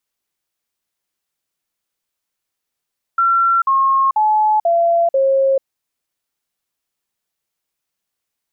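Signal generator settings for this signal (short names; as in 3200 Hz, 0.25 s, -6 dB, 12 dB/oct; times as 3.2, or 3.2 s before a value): stepped sine 1360 Hz down, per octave 3, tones 5, 0.44 s, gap 0.05 s -11 dBFS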